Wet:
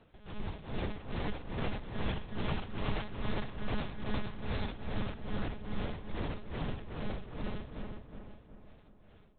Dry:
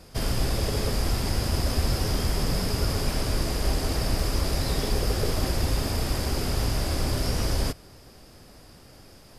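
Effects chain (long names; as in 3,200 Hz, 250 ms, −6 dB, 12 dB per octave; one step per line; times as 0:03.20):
source passing by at 0:02.79, 17 m/s, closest 6 metres
dynamic equaliser 420 Hz, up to −7 dB, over −53 dBFS, Q 2.8
automatic gain control gain up to 9 dB
soft clipping −37.5 dBFS, distortion 0 dB
amplitude tremolo 2.4 Hz, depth 86%
one-pitch LPC vocoder at 8 kHz 210 Hz
feedback echo with a low-pass in the loop 366 ms, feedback 48%, low-pass 2,000 Hz, level −4 dB
level +6 dB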